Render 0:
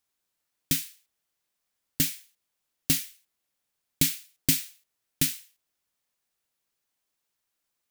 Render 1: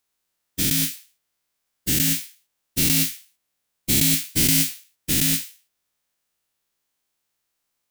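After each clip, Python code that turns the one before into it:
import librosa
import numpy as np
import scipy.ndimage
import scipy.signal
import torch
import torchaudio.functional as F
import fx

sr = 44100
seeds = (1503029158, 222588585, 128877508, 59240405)

y = fx.spec_dilate(x, sr, span_ms=240)
y = y * librosa.db_to_amplitude(-1.5)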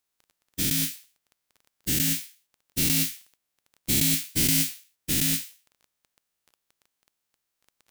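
y = fx.dmg_crackle(x, sr, seeds[0], per_s=12.0, level_db=-36.0)
y = y * librosa.db_to_amplitude(-4.0)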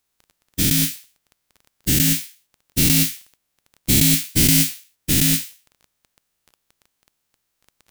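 y = fx.low_shelf(x, sr, hz=200.0, db=6.0)
y = y * librosa.db_to_amplitude(6.5)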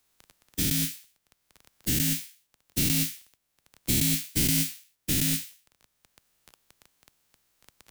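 y = fx.band_squash(x, sr, depth_pct=40)
y = y * librosa.db_to_amplitude(-8.5)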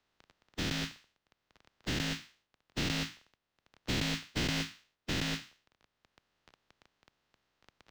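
y = fx.spec_flatten(x, sr, power=0.51)
y = fx.air_absorb(y, sr, metres=200.0)
y = fx.notch(y, sr, hz=2300.0, q=19.0)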